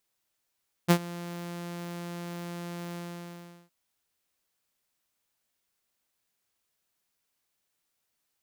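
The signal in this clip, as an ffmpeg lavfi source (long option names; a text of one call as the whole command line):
ffmpeg -f lavfi -i "aevalsrc='0.224*(2*mod(173*t,1)-1)':duration=2.816:sample_rate=44100,afade=type=in:duration=0.026,afade=type=out:start_time=0.026:duration=0.073:silence=0.0944,afade=type=out:start_time=2.07:duration=0.746" out.wav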